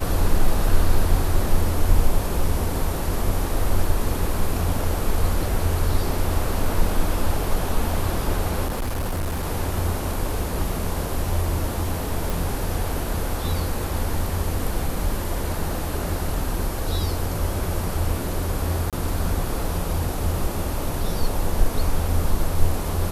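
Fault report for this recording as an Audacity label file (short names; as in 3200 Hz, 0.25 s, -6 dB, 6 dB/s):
8.660000	9.460000	clipped -21.5 dBFS
12.300000	12.300000	pop
18.900000	18.930000	gap 27 ms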